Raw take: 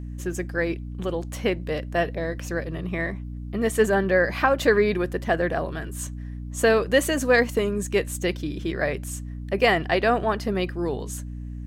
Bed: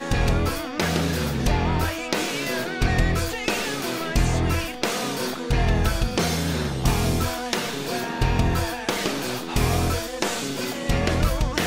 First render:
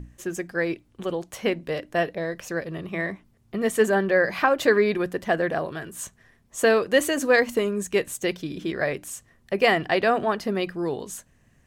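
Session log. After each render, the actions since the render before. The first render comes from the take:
mains-hum notches 60/120/180/240/300 Hz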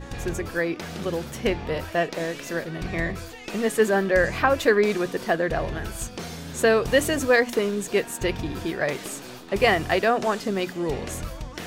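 mix in bed −12 dB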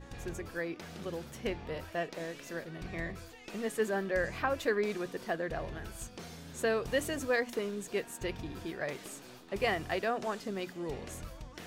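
level −11.5 dB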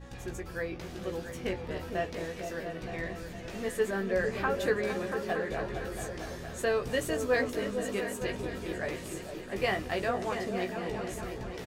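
double-tracking delay 16 ms −5 dB
echo whose low-pass opens from repeat to repeat 228 ms, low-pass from 200 Hz, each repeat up 2 octaves, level −3 dB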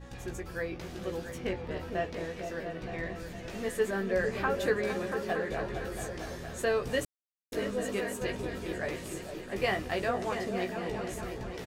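0:01.38–0:03.20: high-shelf EQ 6,300 Hz −7.5 dB
0:07.05–0:07.52: silence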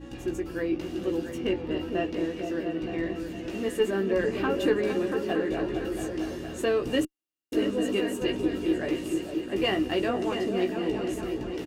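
one-sided soft clipper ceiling −19 dBFS
hollow resonant body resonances 310/2,800 Hz, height 17 dB, ringing for 45 ms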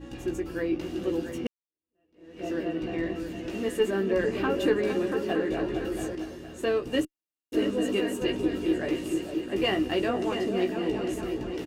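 0:01.47–0:02.46: fade in exponential
0:06.15–0:07.54: expander for the loud parts, over −33 dBFS

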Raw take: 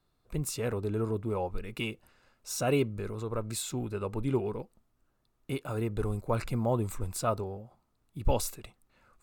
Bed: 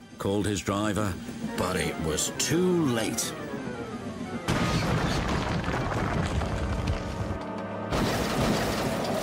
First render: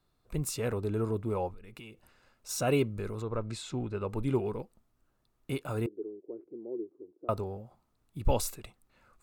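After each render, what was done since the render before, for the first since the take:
0:01.51–0:02.49: downward compressor, threshold −45 dBFS
0:03.22–0:04.09: high-frequency loss of the air 100 metres
0:05.86–0:07.29: flat-topped band-pass 360 Hz, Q 3.2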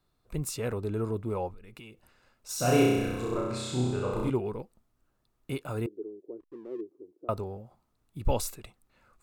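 0:02.56–0:04.30: flutter between parallel walls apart 5.5 metres, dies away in 1.3 s
0:06.40–0:06.81: slack as between gear wheels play −47 dBFS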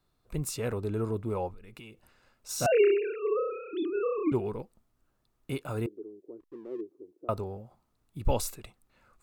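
0:02.66–0:04.32: three sine waves on the formant tracks
0:05.89–0:06.42: dynamic equaliser 490 Hz, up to −5 dB, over −48 dBFS, Q 1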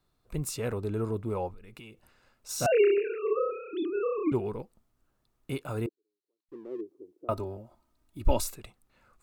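0:02.95–0:03.51: double-tracking delay 25 ms −5 dB
0:05.89–0:06.49: resonant band-pass 4,100 Hz, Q 8.6
0:07.31–0:08.44: comb filter 3.2 ms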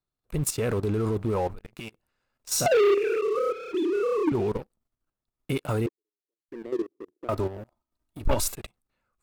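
output level in coarse steps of 12 dB
leveller curve on the samples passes 3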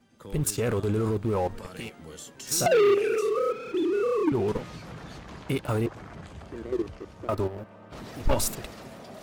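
mix in bed −15.5 dB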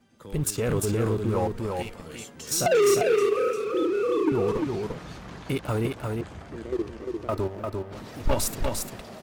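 single-tap delay 349 ms −4 dB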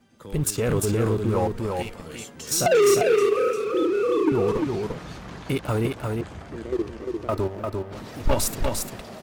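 level +2.5 dB

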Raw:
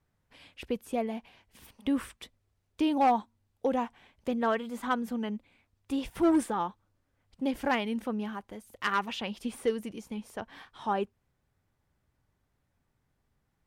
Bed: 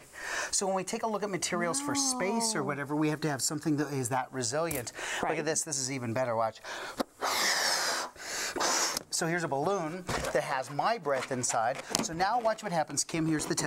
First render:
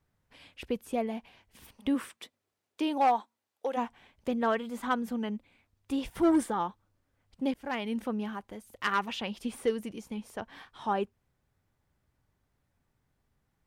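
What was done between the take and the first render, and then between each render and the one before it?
0:01.94–0:03.76: high-pass filter 180 Hz → 580 Hz
0:06.15–0:06.62: notch filter 2,600 Hz
0:07.54–0:07.94: fade in, from −24 dB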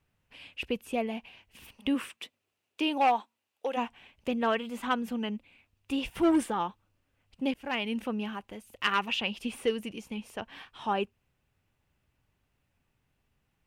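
parametric band 2,700 Hz +11 dB 0.44 octaves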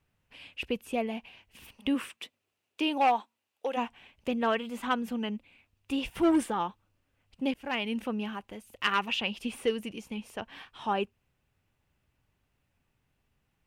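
no processing that can be heard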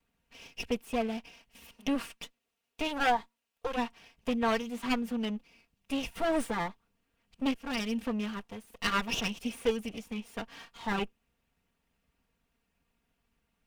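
lower of the sound and its delayed copy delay 4.3 ms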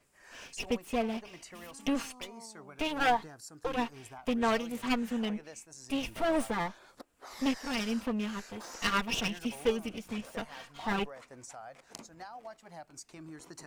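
mix in bed −18 dB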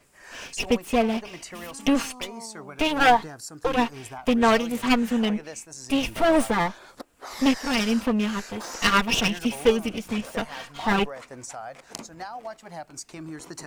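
level +9.5 dB

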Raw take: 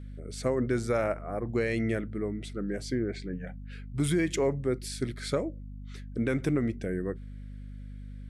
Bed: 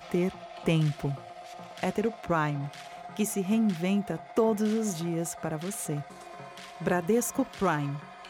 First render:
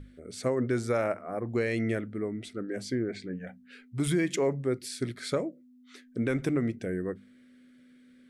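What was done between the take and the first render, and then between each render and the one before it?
mains-hum notches 50/100/150/200 Hz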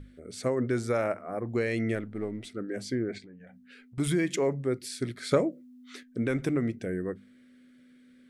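0:01.95–0:02.46: gain on one half-wave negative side −3 dB
0:03.18–0:03.98: downward compressor, threshold −47 dBFS
0:05.31–0:06.03: clip gain +5.5 dB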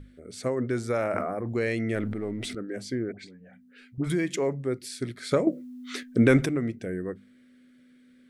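0:00.90–0:02.55: level that may fall only so fast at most 21 dB per second
0:03.12–0:04.10: all-pass dispersion highs, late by 65 ms, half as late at 1,000 Hz
0:05.47–0:06.46: clip gain +10 dB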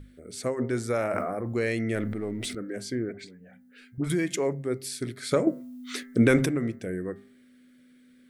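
high-shelf EQ 9,200 Hz +10 dB
hum removal 132.8 Hz, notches 16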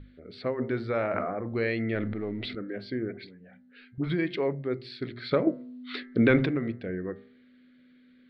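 elliptic low-pass filter 4,300 Hz, stop band 40 dB
hum removal 119.3 Hz, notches 5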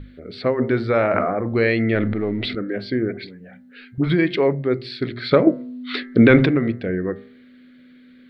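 level +10 dB
brickwall limiter −2 dBFS, peak gain reduction 2.5 dB

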